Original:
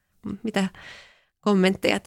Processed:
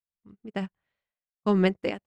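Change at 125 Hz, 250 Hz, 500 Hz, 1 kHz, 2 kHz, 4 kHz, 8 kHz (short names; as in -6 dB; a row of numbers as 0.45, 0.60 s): -3.5 dB, -3.5 dB, -3.5 dB, -5.0 dB, -8.0 dB, -10.0 dB, under -20 dB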